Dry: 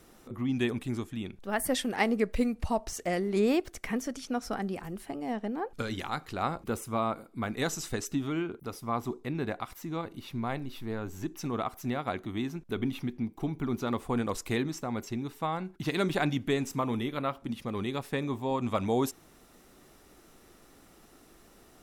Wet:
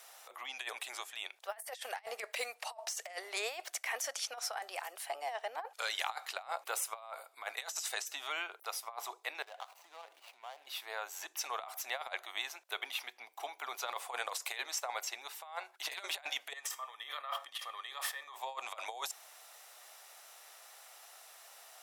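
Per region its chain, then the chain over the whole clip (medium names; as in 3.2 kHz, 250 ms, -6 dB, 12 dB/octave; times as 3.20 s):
9.42–10.67 s: median filter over 25 samples + compression 10:1, threshold -41 dBFS
16.53–18.36 s: compressor with a negative ratio -42 dBFS + feedback comb 160 Hz, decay 0.34 s, mix 40% + small resonant body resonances 1.2/1.8/3.2 kHz, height 14 dB, ringing for 25 ms
whole clip: steep high-pass 660 Hz 36 dB/octave; peaking EQ 1.2 kHz -5 dB 1.2 oct; compressor with a negative ratio -42 dBFS, ratio -0.5; trim +3.5 dB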